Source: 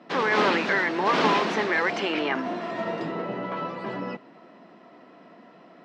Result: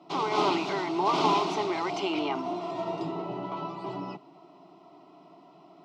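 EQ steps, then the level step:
phaser with its sweep stopped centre 340 Hz, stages 8
0.0 dB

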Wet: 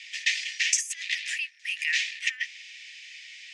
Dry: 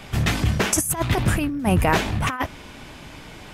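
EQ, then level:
Chebyshev high-pass with heavy ripple 1,800 Hz, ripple 3 dB
low-pass filter 6,500 Hz 24 dB per octave
+3.5 dB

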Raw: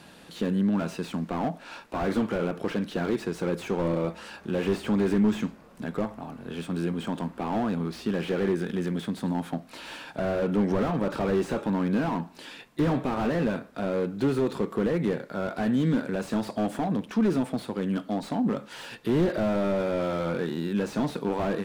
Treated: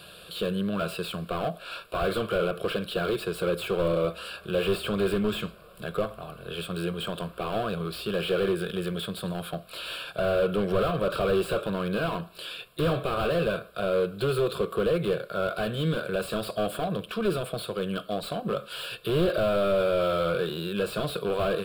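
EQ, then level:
high-shelf EQ 2,800 Hz +8 dB
phaser with its sweep stopped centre 1,300 Hz, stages 8
+4.0 dB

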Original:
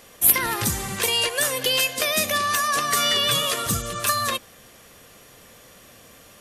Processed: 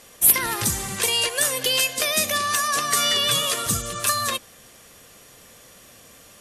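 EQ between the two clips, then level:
low-pass filter 10,000 Hz 12 dB per octave
high-shelf EQ 7,300 Hz +10.5 dB
−1.5 dB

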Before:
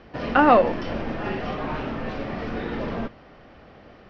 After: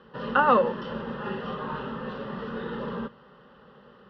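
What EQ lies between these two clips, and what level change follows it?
high-pass filter 74 Hz 12 dB per octave
low-pass with resonance 2,900 Hz, resonance Q 2.5
phaser with its sweep stopped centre 460 Hz, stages 8
−1.5 dB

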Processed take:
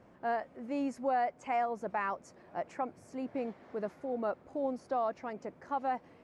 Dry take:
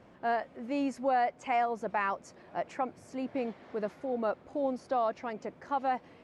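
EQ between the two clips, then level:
parametric band 3,400 Hz −5.5 dB 1.2 octaves
−2.5 dB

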